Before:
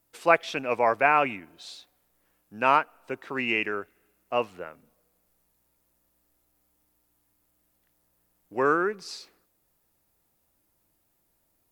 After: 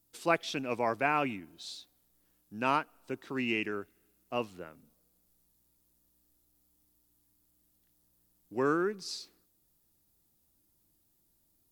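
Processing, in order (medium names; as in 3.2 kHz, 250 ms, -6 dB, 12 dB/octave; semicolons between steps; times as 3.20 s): high-order bell 1.1 kHz -8.5 dB 2.9 oct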